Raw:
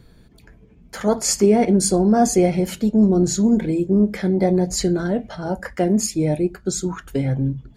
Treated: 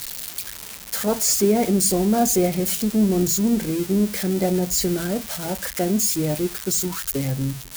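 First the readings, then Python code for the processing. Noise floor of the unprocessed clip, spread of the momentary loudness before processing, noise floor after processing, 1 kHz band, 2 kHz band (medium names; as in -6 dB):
-50 dBFS, 9 LU, -38 dBFS, -3.0 dB, 0.0 dB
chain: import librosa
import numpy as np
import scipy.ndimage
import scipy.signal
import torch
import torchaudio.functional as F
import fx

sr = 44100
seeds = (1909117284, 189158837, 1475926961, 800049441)

y = x + 0.5 * 10.0 ** (-14.0 / 20.0) * np.diff(np.sign(x), prepend=np.sign(x[:1]))
y = y * librosa.db_to_amplitude(-3.5)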